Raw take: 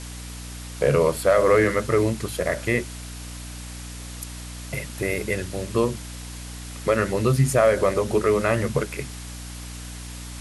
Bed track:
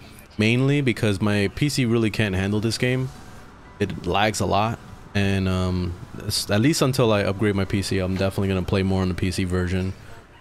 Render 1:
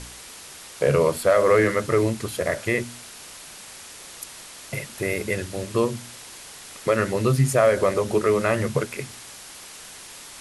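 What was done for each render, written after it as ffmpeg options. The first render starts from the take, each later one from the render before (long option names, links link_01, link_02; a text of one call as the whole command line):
ffmpeg -i in.wav -af "bandreject=frequency=60:width_type=h:width=4,bandreject=frequency=120:width_type=h:width=4,bandreject=frequency=180:width_type=h:width=4,bandreject=frequency=240:width_type=h:width=4,bandreject=frequency=300:width_type=h:width=4" out.wav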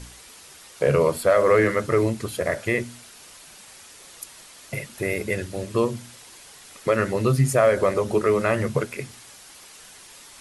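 ffmpeg -i in.wav -af "afftdn=noise_reduction=6:noise_floor=-42" out.wav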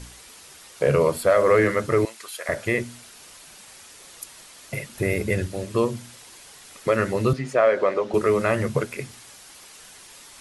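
ffmpeg -i in.wav -filter_complex "[0:a]asettb=1/sr,asplit=3[link_01][link_02][link_03];[link_01]atrim=end=2.054[link_04];[link_02]atrim=start=2.05:end=2.49,asetpts=PTS-STARTPTS,afade=type=in:duration=0.004:curve=qsin,afade=type=out:start_time=0.436:duration=0.004:curve=qsin,highpass=1100[link_05];[link_03]atrim=start=2.486[link_06];[link_04][link_05]acrossfade=duration=0.004:curve1=hsin:curve2=qsin[link_07];[link_07][link_06]acrossfade=duration=0.004:curve1=qsin:curve2=hsin,asettb=1/sr,asplit=3[link_08][link_09][link_10];[link_08]atrim=end=4.954[link_11];[link_09]atrim=start=4.95:end=5.48,asetpts=PTS-STARTPTS,afade=type=in:duration=0.004:curve=qsin,afade=type=out:start_time=0.526:duration=0.004:curve=qsin,lowshelf=frequency=210:gain=8.5[link_12];[link_10]atrim=start=5.476[link_13];[link_11][link_12]acrossfade=duration=0.004:curve1=hsin:curve2=qsin[link_14];[link_14][link_13]acrossfade=duration=0.004:curve1=qsin:curve2=hsin,asettb=1/sr,asplit=3[link_15][link_16][link_17];[link_15]atrim=end=7.334[link_18];[link_16]atrim=start=7.33:end=8.14,asetpts=PTS-STARTPTS,afade=type=in:duration=0.004:curve=qsin,afade=type=out:start_time=0.806:duration=0.004:curve=qsin,highpass=290,lowpass=3800[link_19];[link_17]atrim=start=8.136[link_20];[link_18][link_19]acrossfade=duration=0.004:curve1=hsin:curve2=qsin[link_21];[link_21][link_20]acrossfade=duration=0.004:curve1=qsin:curve2=hsin" out.wav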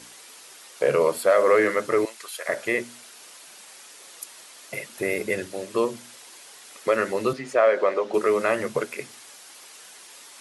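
ffmpeg -i in.wav -af "highpass=300" out.wav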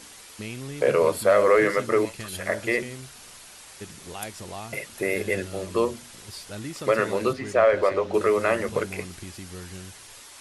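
ffmpeg -i in.wav -i bed.wav -filter_complex "[1:a]volume=-17dB[link_01];[0:a][link_01]amix=inputs=2:normalize=0" out.wav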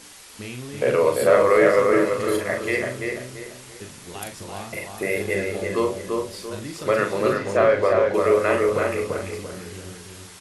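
ffmpeg -i in.wav -filter_complex "[0:a]asplit=2[link_01][link_02];[link_02]adelay=40,volume=-5.5dB[link_03];[link_01][link_03]amix=inputs=2:normalize=0,asplit=2[link_04][link_05];[link_05]adelay=340,lowpass=frequency=2300:poles=1,volume=-3dB,asplit=2[link_06][link_07];[link_07]adelay=340,lowpass=frequency=2300:poles=1,volume=0.36,asplit=2[link_08][link_09];[link_09]adelay=340,lowpass=frequency=2300:poles=1,volume=0.36,asplit=2[link_10][link_11];[link_11]adelay=340,lowpass=frequency=2300:poles=1,volume=0.36,asplit=2[link_12][link_13];[link_13]adelay=340,lowpass=frequency=2300:poles=1,volume=0.36[link_14];[link_04][link_06][link_08][link_10][link_12][link_14]amix=inputs=6:normalize=0" out.wav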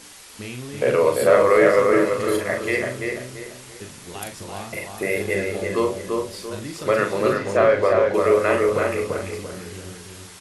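ffmpeg -i in.wav -af "volume=1dB" out.wav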